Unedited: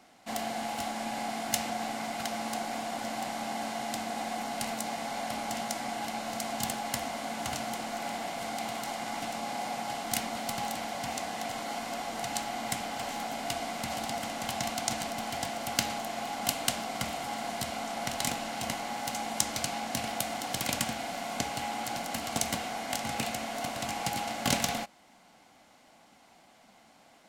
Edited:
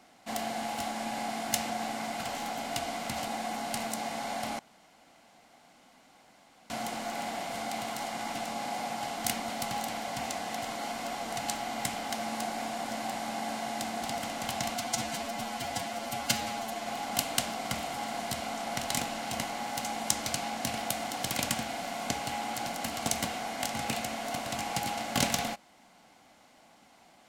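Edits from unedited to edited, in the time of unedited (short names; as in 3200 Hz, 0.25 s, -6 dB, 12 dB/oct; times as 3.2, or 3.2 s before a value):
2.23–4.15 swap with 12.97–14.02
5.46–7.57 room tone
14.76–16.16 stretch 1.5×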